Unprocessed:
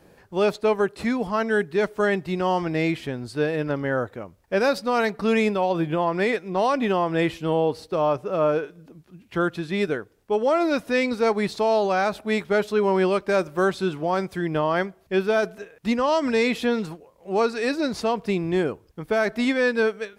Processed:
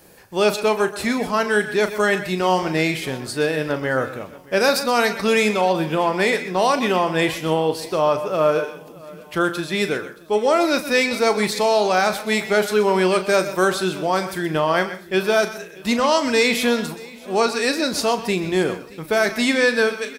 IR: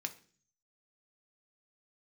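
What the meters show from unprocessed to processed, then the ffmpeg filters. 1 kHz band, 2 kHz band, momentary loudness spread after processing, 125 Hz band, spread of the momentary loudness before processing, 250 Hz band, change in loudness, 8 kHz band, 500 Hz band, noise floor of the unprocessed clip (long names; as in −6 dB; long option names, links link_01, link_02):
+4.5 dB, +6.0 dB, 7 LU, +1.0 dB, 6 LU, +1.5 dB, +3.5 dB, can't be measured, +3.0 dB, −56 dBFS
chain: -filter_complex "[0:a]asplit=2[link_01][link_02];[link_02]adelay=38,volume=-11dB[link_03];[link_01][link_03]amix=inputs=2:normalize=0,asplit=2[link_04][link_05];[1:a]atrim=start_sample=2205,adelay=125[link_06];[link_05][link_06]afir=irnorm=-1:irlink=0,volume=-11.5dB[link_07];[link_04][link_07]amix=inputs=2:normalize=0,crystalizer=i=2.5:c=0,lowshelf=frequency=380:gain=-3.5,aecho=1:1:624|1248|1872:0.0794|0.0381|0.0183,volume=3.5dB"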